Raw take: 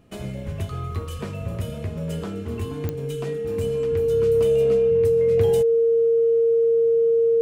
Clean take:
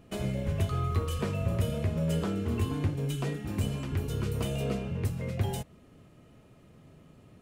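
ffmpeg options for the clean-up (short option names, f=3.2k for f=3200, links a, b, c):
-af "adeclick=t=4,bandreject=f=460:w=30,asetnsamples=n=441:p=0,asendcmd='5.31 volume volume -3.5dB',volume=0dB"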